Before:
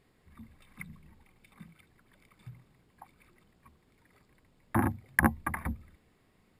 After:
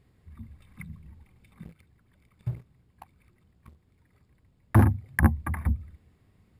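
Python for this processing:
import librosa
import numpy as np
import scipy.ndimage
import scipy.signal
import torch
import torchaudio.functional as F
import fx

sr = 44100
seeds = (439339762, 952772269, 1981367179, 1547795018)

y = fx.peak_eq(x, sr, hz=80.0, db=15.0, octaves=2.2)
y = fx.leveller(y, sr, passes=2, at=(1.63, 4.84))
y = F.gain(torch.from_numpy(y), -2.5).numpy()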